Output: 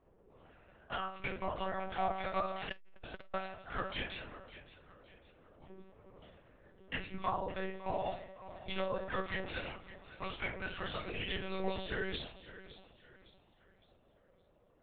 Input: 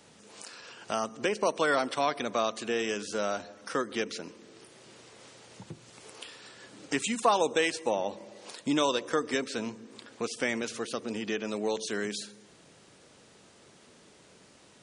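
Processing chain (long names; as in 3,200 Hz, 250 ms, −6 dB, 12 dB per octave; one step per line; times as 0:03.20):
low-pass that shuts in the quiet parts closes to 430 Hz, open at −26.5 dBFS
low-pass filter 2,000 Hz 6 dB per octave
first difference
treble cut that deepens with the level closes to 770 Hz, closed at −42.5 dBFS
downward compressor 3 to 1, threshold −51 dBFS, peak gain reduction 7.5 dB
phase shifter 0.17 Hz, delay 1.9 ms, feedback 37%
feedback echo with a high-pass in the loop 561 ms, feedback 39%, high-pass 180 Hz, level −15 dB
rectangular room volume 210 cubic metres, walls furnished, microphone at 3.5 metres
one-pitch LPC vocoder at 8 kHz 190 Hz
0:02.68–0:03.34: saturating transformer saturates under 330 Hz
level +10.5 dB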